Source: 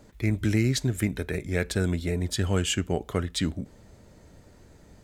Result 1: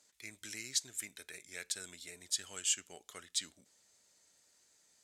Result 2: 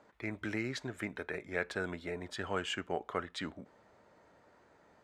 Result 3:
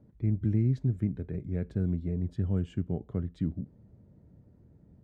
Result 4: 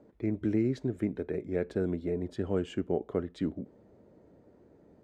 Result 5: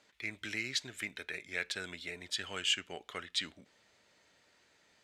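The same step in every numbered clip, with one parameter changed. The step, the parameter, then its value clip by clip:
band-pass, frequency: 7400, 1100, 140, 380, 2900 Hz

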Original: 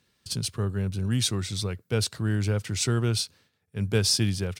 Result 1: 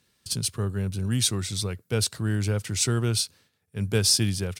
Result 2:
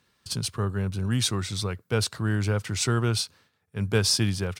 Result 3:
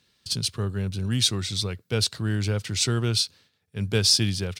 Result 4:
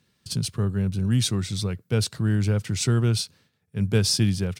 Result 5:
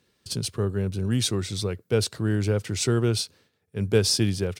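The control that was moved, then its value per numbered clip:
bell, frequency: 11000, 1100, 4000, 160, 410 Hz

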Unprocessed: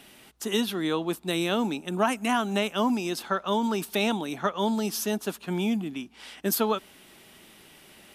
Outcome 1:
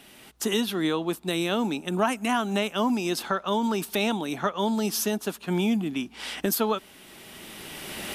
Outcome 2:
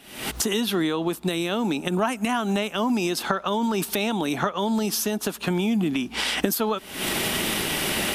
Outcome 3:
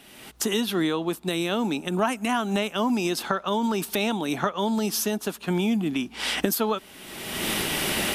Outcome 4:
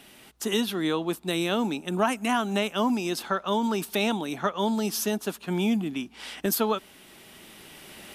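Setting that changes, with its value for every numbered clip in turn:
recorder AGC, rising by: 13, 89, 35, 5.4 dB/s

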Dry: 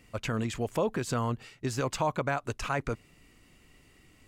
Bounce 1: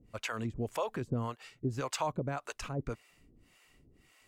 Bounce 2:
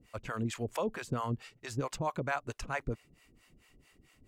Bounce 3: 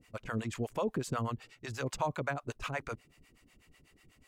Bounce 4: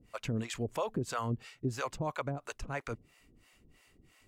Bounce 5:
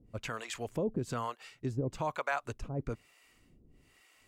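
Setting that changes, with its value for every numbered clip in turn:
harmonic tremolo, rate: 1.8, 4.5, 8.1, 3, 1.1 Hz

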